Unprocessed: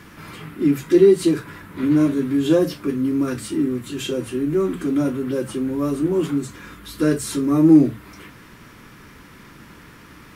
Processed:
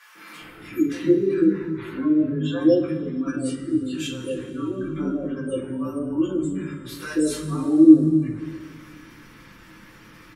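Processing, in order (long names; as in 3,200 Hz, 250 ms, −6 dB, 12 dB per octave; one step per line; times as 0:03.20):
three-band delay without the direct sound highs, mids, lows 150/400 ms, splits 220/770 Hz
gate on every frequency bin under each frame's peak −30 dB strong
coupled-rooms reverb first 0.29 s, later 2.5 s, from −18 dB, DRR −5 dB
level −7.5 dB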